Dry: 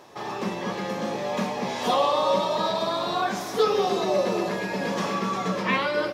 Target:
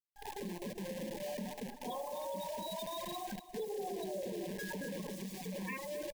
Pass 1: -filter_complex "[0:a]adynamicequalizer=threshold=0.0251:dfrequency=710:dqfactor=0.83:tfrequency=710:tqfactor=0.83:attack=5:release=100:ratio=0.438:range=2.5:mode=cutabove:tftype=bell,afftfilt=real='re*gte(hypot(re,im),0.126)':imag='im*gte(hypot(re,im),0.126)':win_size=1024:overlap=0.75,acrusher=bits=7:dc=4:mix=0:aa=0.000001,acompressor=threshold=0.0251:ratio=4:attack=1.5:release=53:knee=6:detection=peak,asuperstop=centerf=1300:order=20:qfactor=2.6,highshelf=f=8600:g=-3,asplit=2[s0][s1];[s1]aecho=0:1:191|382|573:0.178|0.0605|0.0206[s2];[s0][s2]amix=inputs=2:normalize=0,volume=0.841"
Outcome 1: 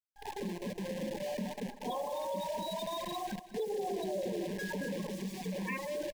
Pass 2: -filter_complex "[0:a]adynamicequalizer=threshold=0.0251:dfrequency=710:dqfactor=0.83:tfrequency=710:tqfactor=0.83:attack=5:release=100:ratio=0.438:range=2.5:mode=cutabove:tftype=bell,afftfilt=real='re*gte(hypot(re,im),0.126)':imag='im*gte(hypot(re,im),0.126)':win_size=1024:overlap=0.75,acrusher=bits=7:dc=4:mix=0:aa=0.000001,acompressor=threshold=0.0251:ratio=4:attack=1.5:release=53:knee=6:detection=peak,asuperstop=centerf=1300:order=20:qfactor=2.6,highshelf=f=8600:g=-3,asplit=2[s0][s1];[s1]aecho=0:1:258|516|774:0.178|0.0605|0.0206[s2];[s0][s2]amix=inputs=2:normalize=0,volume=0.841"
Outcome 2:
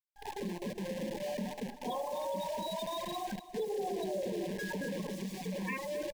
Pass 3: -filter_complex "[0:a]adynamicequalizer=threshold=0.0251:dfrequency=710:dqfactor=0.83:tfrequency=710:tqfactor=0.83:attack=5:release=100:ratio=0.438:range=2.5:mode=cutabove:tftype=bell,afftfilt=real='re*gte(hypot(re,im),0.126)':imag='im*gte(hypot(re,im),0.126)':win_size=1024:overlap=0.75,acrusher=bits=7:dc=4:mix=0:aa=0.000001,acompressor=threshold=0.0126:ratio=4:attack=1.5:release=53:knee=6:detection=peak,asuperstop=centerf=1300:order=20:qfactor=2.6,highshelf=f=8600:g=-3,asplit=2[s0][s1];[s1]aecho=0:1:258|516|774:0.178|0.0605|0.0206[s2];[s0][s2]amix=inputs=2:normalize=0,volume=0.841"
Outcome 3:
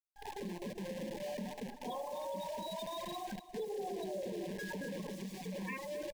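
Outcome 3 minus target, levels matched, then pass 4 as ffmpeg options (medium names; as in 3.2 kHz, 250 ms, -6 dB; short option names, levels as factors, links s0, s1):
8 kHz band -3.5 dB
-filter_complex "[0:a]adynamicequalizer=threshold=0.0251:dfrequency=710:dqfactor=0.83:tfrequency=710:tqfactor=0.83:attack=5:release=100:ratio=0.438:range=2.5:mode=cutabove:tftype=bell,afftfilt=real='re*gte(hypot(re,im),0.126)':imag='im*gte(hypot(re,im),0.126)':win_size=1024:overlap=0.75,acrusher=bits=7:dc=4:mix=0:aa=0.000001,acompressor=threshold=0.0126:ratio=4:attack=1.5:release=53:knee=6:detection=peak,asuperstop=centerf=1300:order=20:qfactor=2.6,highshelf=f=8600:g=5.5,asplit=2[s0][s1];[s1]aecho=0:1:258|516|774:0.178|0.0605|0.0206[s2];[s0][s2]amix=inputs=2:normalize=0,volume=0.841"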